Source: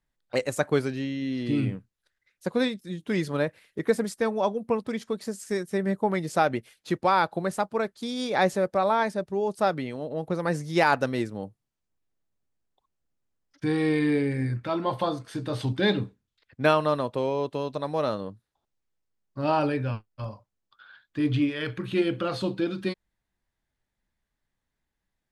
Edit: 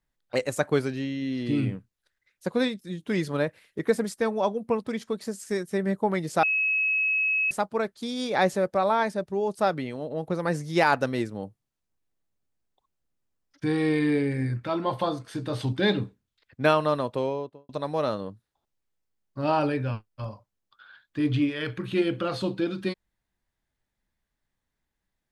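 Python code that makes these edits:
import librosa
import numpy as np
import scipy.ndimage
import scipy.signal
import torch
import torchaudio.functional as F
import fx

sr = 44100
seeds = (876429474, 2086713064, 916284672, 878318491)

y = fx.studio_fade_out(x, sr, start_s=17.18, length_s=0.51)
y = fx.edit(y, sr, fx.bleep(start_s=6.43, length_s=1.08, hz=2570.0, db=-21.5), tone=tone)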